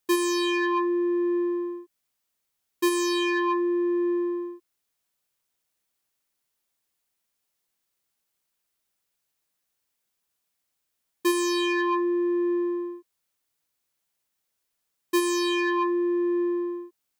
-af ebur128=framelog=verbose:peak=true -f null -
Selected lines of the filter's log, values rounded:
Integrated loudness:
  I:         -25.4 LUFS
  Threshold: -35.8 LUFS
Loudness range:
  LRA:         6.1 LU
  Threshold: -48.5 LUFS
  LRA low:   -32.7 LUFS
  LRA high:  -26.7 LUFS
True peak:
  Peak:      -15.3 dBFS